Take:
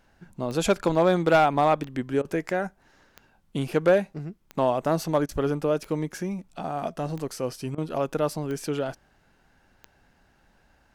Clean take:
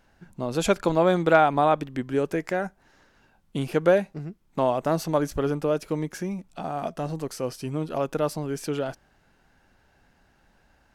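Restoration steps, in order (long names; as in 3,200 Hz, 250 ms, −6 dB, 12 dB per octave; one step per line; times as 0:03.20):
clipped peaks rebuilt −12.5 dBFS
click removal
repair the gap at 0:02.22/0:05.26/0:07.75, 27 ms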